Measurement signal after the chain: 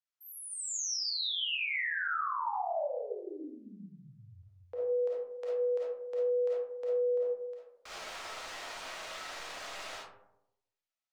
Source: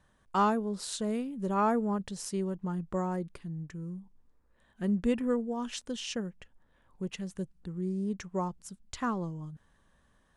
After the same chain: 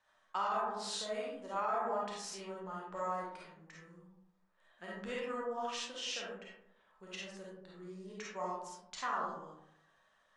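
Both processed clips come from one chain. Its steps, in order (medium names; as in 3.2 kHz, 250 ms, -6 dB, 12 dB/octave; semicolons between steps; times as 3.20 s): bass shelf 260 Hz -8.5 dB; flange 0.3 Hz, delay 9.7 ms, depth 2 ms, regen +60%; three-band isolator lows -16 dB, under 530 Hz, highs -20 dB, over 7.4 kHz; algorithmic reverb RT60 0.84 s, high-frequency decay 0.35×, pre-delay 10 ms, DRR -5.5 dB; peak limiter -26 dBFS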